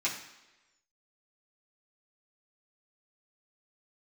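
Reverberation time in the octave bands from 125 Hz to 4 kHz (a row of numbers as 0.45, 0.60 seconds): 0.80, 0.95, 1.1, 1.0, 1.1, 1.0 seconds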